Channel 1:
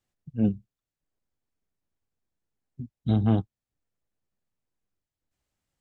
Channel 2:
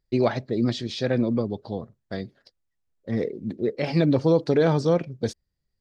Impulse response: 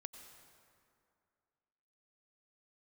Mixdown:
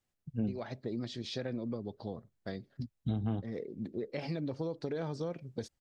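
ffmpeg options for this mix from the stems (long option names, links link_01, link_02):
-filter_complex "[0:a]volume=-2dB[link_01];[1:a]acompressor=threshold=-27dB:ratio=4,adelay=350,volume=-7dB[link_02];[link_01][link_02]amix=inputs=2:normalize=0,acompressor=threshold=-30dB:ratio=6"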